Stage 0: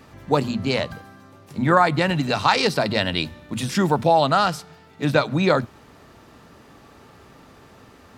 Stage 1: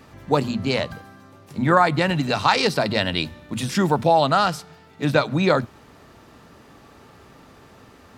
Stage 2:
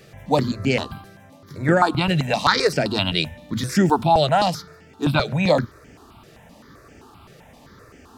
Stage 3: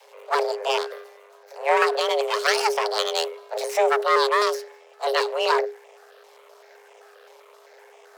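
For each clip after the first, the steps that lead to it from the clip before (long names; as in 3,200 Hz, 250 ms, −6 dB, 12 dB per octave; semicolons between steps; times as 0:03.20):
no processing that can be heard
step-sequenced phaser 7.7 Hz 260–3,900 Hz; level +4 dB
half-wave rectification; frequency shifter +410 Hz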